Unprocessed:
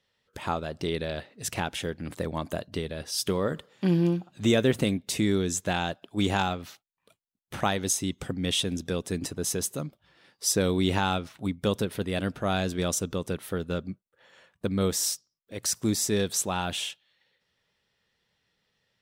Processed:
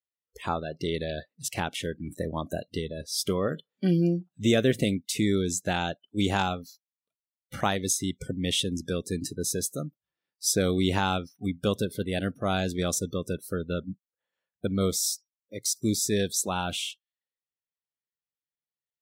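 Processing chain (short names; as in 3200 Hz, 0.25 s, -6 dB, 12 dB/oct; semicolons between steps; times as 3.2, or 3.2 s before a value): spectral noise reduction 30 dB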